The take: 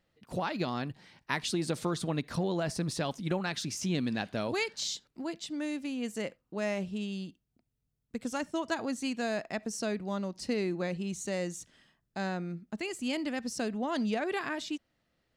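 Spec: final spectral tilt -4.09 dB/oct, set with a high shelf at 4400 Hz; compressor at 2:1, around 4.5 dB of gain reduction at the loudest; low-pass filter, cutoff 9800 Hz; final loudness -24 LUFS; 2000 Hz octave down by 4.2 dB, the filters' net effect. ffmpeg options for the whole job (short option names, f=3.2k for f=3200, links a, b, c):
-af "lowpass=9.8k,equalizer=f=2k:t=o:g=-7,highshelf=f=4.4k:g=7,acompressor=threshold=-35dB:ratio=2,volume=13.5dB"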